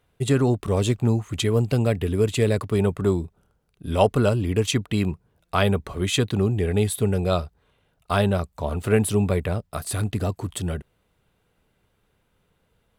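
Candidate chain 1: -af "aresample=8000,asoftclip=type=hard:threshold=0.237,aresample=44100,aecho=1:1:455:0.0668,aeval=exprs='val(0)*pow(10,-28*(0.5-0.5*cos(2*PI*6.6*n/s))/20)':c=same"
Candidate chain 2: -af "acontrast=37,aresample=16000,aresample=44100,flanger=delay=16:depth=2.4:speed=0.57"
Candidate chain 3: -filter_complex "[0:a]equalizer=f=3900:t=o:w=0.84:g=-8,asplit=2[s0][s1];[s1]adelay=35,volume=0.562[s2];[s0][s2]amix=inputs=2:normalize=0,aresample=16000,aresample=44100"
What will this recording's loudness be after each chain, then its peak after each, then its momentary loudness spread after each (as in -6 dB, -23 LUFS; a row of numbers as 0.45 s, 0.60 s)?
-30.0 LUFS, -21.0 LUFS, -22.5 LUFS; -11.5 dBFS, -4.0 dBFS, -5.0 dBFS; 9 LU, 10 LU, 8 LU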